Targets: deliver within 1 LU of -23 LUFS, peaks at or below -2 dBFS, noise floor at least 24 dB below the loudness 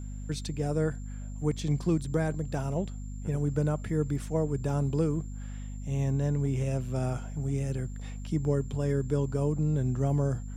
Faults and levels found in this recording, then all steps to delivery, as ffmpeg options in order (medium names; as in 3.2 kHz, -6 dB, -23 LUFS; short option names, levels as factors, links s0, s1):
hum 50 Hz; highest harmonic 250 Hz; hum level -36 dBFS; steady tone 7.3 kHz; tone level -56 dBFS; loudness -30.5 LUFS; peak level -15.0 dBFS; loudness target -23.0 LUFS
-> -af "bandreject=f=50:t=h:w=4,bandreject=f=100:t=h:w=4,bandreject=f=150:t=h:w=4,bandreject=f=200:t=h:w=4,bandreject=f=250:t=h:w=4"
-af "bandreject=f=7300:w=30"
-af "volume=2.37"